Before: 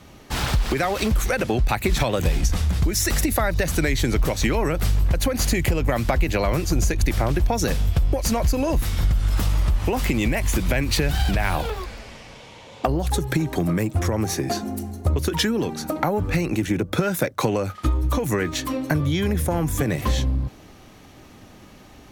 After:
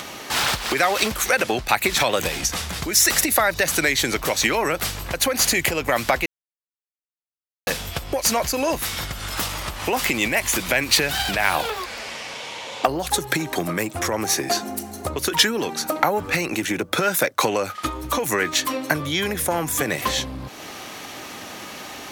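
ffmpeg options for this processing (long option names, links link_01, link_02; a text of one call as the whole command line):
ffmpeg -i in.wav -filter_complex "[0:a]asplit=3[link_01][link_02][link_03];[link_01]atrim=end=6.26,asetpts=PTS-STARTPTS,afade=type=out:start_time=6.256:duration=0.004:curve=hsin[link_04];[link_02]atrim=start=6.26:end=7.67,asetpts=PTS-STARTPTS,volume=0[link_05];[link_03]atrim=start=7.67,asetpts=PTS-STARTPTS,afade=type=in:duration=0.004:curve=hsin[link_06];[link_04][link_05][link_06]concat=n=3:v=0:a=1,highpass=frequency=900:poles=1,acompressor=mode=upward:threshold=-33dB:ratio=2.5,volume=7.5dB" out.wav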